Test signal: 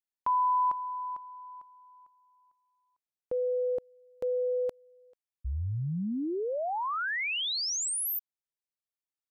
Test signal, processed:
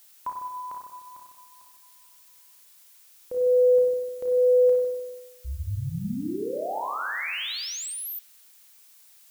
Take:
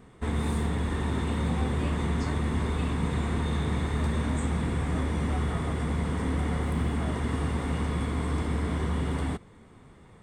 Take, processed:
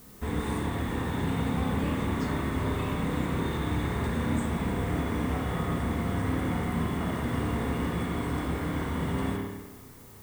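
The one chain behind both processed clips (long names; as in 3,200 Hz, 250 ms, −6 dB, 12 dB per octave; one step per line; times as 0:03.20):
spring reverb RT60 1.2 s, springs 30/50 ms, chirp 55 ms, DRR −1 dB
background noise blue −52 dBFS
level −2.5 dB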